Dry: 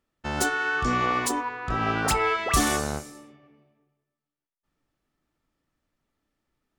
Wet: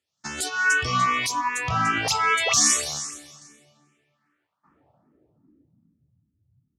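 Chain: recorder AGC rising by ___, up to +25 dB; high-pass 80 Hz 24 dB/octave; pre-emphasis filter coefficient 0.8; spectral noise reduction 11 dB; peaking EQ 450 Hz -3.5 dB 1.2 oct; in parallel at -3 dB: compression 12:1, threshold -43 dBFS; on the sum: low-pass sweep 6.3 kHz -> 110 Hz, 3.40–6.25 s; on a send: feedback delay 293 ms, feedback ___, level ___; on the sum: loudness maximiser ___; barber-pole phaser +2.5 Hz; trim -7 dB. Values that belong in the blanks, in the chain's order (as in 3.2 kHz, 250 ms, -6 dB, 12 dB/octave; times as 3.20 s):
18 dB/s, 29%, -18 dB, +22 dB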